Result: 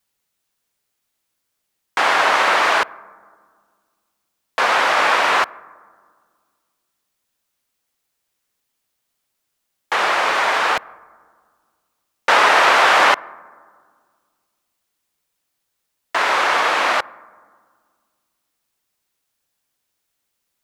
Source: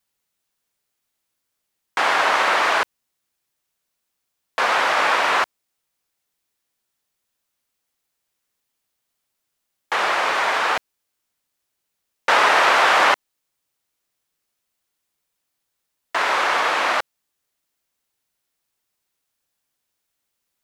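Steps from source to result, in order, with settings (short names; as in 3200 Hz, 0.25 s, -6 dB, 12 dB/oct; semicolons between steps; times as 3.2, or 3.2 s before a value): on a send: LPF 3300 Hz + reverb RT60 1.8 s, pre-delay 52 ms, DRR 22.5 dB; on the sum: gain +2.5 dB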